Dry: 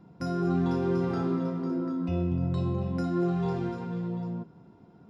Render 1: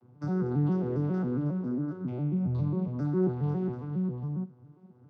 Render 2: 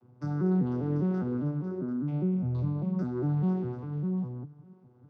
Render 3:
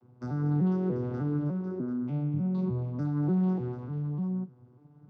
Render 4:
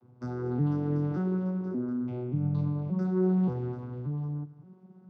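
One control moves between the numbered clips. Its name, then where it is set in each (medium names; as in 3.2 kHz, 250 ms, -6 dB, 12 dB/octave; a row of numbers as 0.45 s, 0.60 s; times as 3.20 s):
vocoder on a broken chord, a note every: 136 ms, 201 ms, 298 ms, 578 ms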